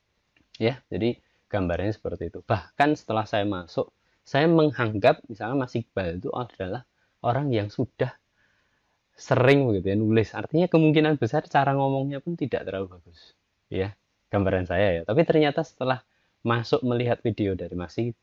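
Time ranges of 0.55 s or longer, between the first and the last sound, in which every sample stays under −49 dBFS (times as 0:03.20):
0:08.16–0:09.18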